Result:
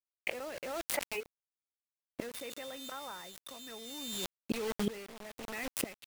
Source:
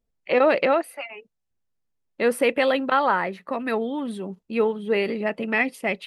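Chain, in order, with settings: 2.33–4.24 whine 3600 Hz -26 dBFS; flipped gate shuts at -25 dBFS, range -30 dB; bit-crush 9-bit; backwards sustainer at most 25 dB/s; gain +5 dB

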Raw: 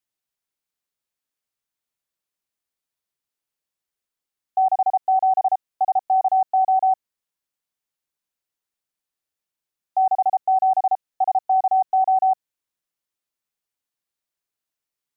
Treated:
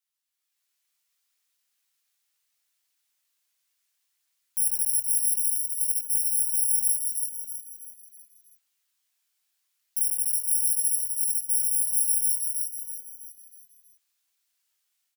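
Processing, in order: FFT order left unsorted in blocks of 64 samples; tilt shelf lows -10 dB, about 820 Hz; limiter -19 dBFS, peak gain reduction 16.5 dB; chorus voices 2, 0.35 Hz, delay 21 ms, depth 1.4 ms; AGC gain up to 9 dB; frequency-shifting echo 0.323 s, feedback 44%, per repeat +50 Hz, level -5 dB; gain -5.5 dB

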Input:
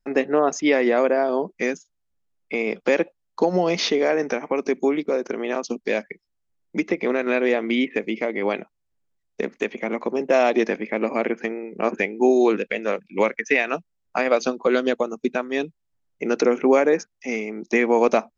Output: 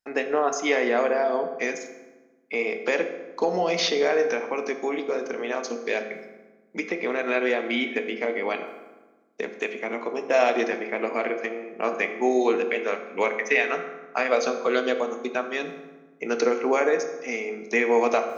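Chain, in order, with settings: HPF 620 Hz 6 dB/oct; reverse; upward compressor, threshold -36 dBFS; reverse; reverb RT60 1.2 s, pre-delay 3 ms, DRR 5 dB; gain -1 dB

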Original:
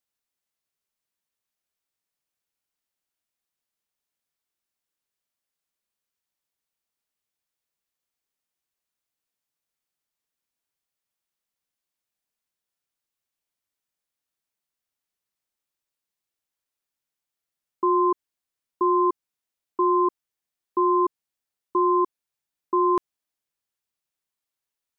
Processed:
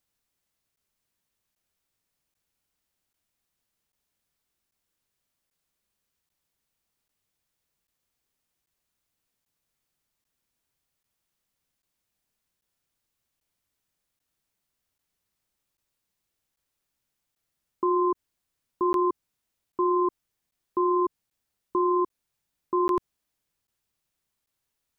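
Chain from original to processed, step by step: low shelf 220 Hz +10 dB; limiter -22.5 dBFS, peak gain reduction 10.5 dB; crackling interface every 0.79 s, samples 512, zero, from 0.76; gain +5 dB

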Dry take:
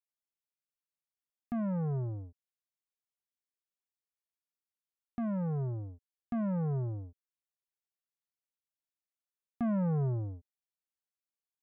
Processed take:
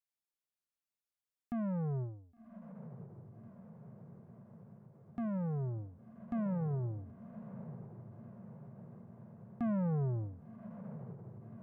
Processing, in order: diffused feedback echo 1.104 s, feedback 69%, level -12 dB; ending taper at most 100 dB/s; gain -3 dB

